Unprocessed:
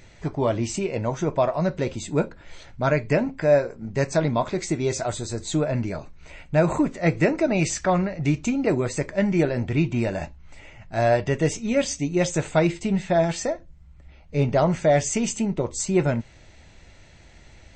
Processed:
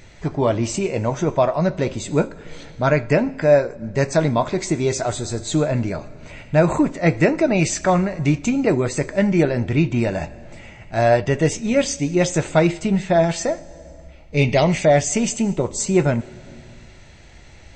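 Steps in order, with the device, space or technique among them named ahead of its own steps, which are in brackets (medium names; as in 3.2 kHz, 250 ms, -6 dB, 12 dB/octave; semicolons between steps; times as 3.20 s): compressed reverb return (on a send at -8 dB: reverberation RT60 1.2 s, pre-delay 68 ms + compression 10:1, threshold -32 dBFS, peak gain reduction 21.5 dB); 14.37–14.85 s: on the sum: resonant high shelf 1.8 kHz +6.5 dB, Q 3; trim +4 dB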